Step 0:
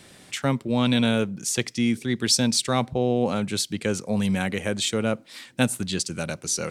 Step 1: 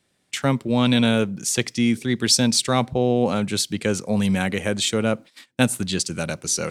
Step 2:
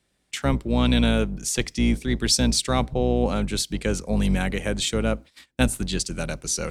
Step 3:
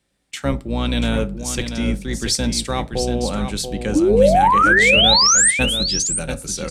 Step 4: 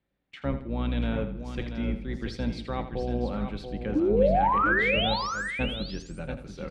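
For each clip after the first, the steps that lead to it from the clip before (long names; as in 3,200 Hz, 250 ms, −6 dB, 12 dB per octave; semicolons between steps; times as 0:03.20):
noise gate −39 dBFS, range −22 dB; level +3 dB
sub-octave generator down 2 octaves, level −1 dB; level −3 dB
sound drawn into the spectrogram rise, 0:03.95–0:05.51, 290–9,300 Hz −14 dBFS; single-tap delay 685 ms −8 dB; on a send at −10 dB: convolution reverb RT60 0.30 s, pre-delay 3 ms
high-frequency loss of the air 370 metres; on a send: repeating echo 82 ms, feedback 36%, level −12 dB; on the sum: level −8 dB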